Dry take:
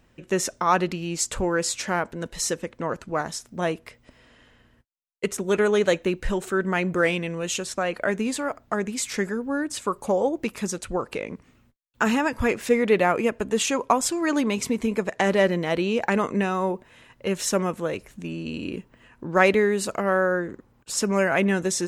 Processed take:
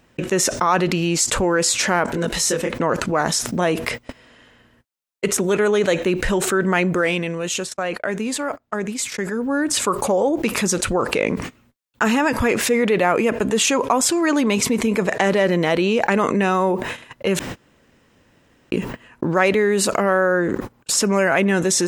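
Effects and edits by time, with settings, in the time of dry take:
2.06–2.74 s: detune thickener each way 20 cents
6.79–9.78 s: dip -17 dB, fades 0.46 s
17.39–18.72 s: room tone
whole clip: gate -46 dBFS, range -34 dB; bass shelf 82 Hz -10.5 dB; level flattener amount 70%

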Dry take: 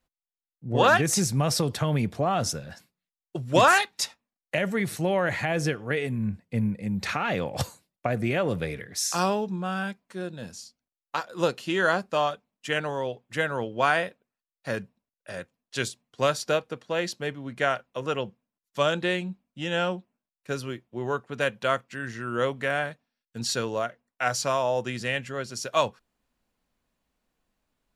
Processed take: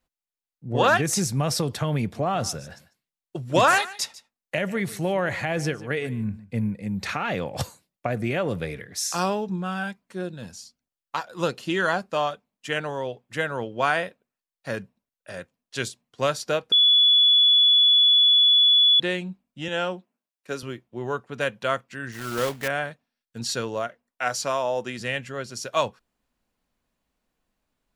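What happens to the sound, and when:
2.01–6.56 s: delay 147 ms -18 dB
9.49–12.01 s: phaser 1.4 Hz, delay 1.4 ms, feedback 30%
16.72–19.00 s: bleep 3.42 kHz -13.5 dBFS
19.68–20.63 s: high-pass 200 Hz
22.12–22.69 s: block-companded coder 3-bit
23.87–24.99 s: peaking EQ 110 Hz -7.5 dB 0.82 oct

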